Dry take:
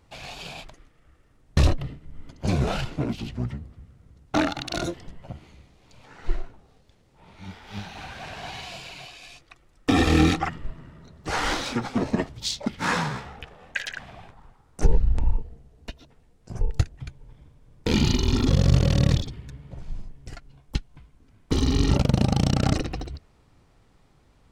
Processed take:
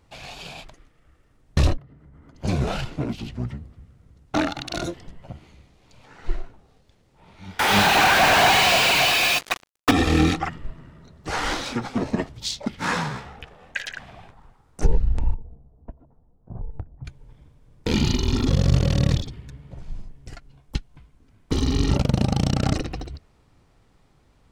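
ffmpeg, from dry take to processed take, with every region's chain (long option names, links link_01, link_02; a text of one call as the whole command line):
ffmpeg -i in.wav -filter_complex "[0:a]asettb=1/sr,asplit=3[link_01][link_02][link_03];[link_01]atrim=end=1.774[link_04];[link_02]atrim=start=1.77:end=2.35,asetpts=PTS-STARTPTS,afade=type=in:duration=0.004:curve=qsin,afade=type=out:start_time=0.576:duration=0.004:curve=qsin,highpass=59,highshelf=frequency=2100:width_type=q:width=1.5:gain=-8.5,acompressor=threshold=-44dB:ratio=20:attack=3.2:release=140:knee=1:detection=peak[link_05];[link_03]atrim=start=2.346[link_06];[link_04][link_05]acrossfade=duration=0.004:curve1=hsin:curve2=qsin[link_07];[link_07][link_06]acrossfade=duration=0.004:curve1=qsin:curve2=hsin,asettb=1/sr,asplit=3[link_08][link_09][link_10];[link_08]atrim=end=7.594[link_11];[link_09]atrim=start=7.59:end=9.91,asetpts=PTS-STARTPTS,afade=type=in:duration=0.004:curve=qsin,afade=type=out:start_time=2.316:duration=0.004:curve=qsin,asplit=2[link_12][link_13];[link_13]highpass=frequency=720:poles=1,volume=40dB,asoftclip=type=tanh:threshold=-6.5dB[link_14];[link_12][link_14]amix=inputs=2:normalize=0,lowpass=frequency=2500:poles=1,volume=-6dB,acrusher=bits=3:mix=0:aa=0.5[link_15];[link_10]atrim=start=9.906[link_16];[link_11][link_15]acrossfade=duration=0.004:curve1=hsin:curve2=qsin[link_17];[link_17][link_16]acrossfade=duration=0.004:curve1=qsin:curve2=hsin,asettb=1/sr,asplit=3[link_18][link_19][link_20];[link_18]atrim=end=15.344[link_21];[link_19]atrim=start=15.34:end=17.05,asetpts=PTS-STARTPTS,afade=type=in:duration=0.004:curve=qsin,afade=type=out:start_time=1.706:duration=0.004:curve=qsin,lowpass=frequency=1000:width=0.5412,lowpass=frequency=1000:width=1.3066,equalizer=frequency=410:width_type=o:width=0.83:gain=-4.5,acompressor=threshold=-27dB:ratio=5:attack=3.2:release=140:knee=1:detection=peak[link_22];[link_20]atrim=start=17.046[link_23];[link_21][link_22]acrossfade=duration=0.004:curve1=hsin:curve2=qsin[link_24];[link_24][link_23]acrossfade=duration=0.004:curve1=qsin:curve2=hsin" out.wav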